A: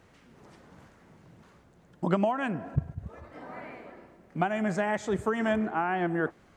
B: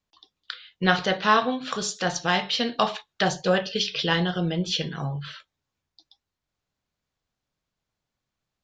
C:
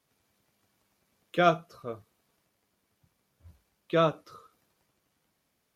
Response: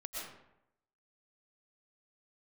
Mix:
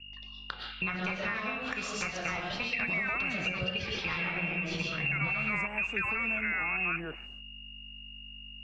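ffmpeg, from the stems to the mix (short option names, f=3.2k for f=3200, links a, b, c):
-filter_complex "[0:a]acrossover=split=410|3000[a][b][c];[a]acompressor=threshold=-32dB:ratio=6[d];[d][b][c]amix=inputs=3:normalize=0,alimiter=limit=-21.5dB:level=0:latency=1:release=239,dynaudnorm=f=340:g=3:m=12dB,adelay=700,volume=0.5dB,asplit=2[e][f];[f]volume=-15.5dB[g];[1:a]aeval=exprs='val(0)+0.00316*(sin(2*PI*50*n/s)+sin(2*PI*2*50*n/s)/2+sin(2*PI*3*50*n/s)/3+sin(2*PI*4*50*n/s)/4+sin(2*PI*5*50*n/s)/5)':c=same,acompressor=threshold=-33dB:ratio=2.5,volume=3dB,asplit=2[h][i];[i]volume=-3dB[j];[2:a]adelay=900,volume=-19.5dB[k];[e][h]amix=inputs=2:normalize=0,lowpass=f=2.5k:t=q:w=0.5098,lowpass=f=2.5k:t=q:w=0.6013,lowpass=f=2.5k:t=q:w=0.9,lowpass=f=2.5k:t=q:w=2.563,afreqshift=-2900,alimiter=limit=-13.5dB:level=0:latency=1,volume=0dB[l];[3:a]atrim=start_sample=2205[m];[j][m]afir=irnorm=-1:irlink=0[n];[g]aecho=0:1:150:1[o];[k][l][n][o]amix=inputs=4:normalize=0,acrossover=split=220[p][q];[q]acompressor=threshold=-33dB:ratio=3[r];[p][r]amix=inputs=2:normalize=0"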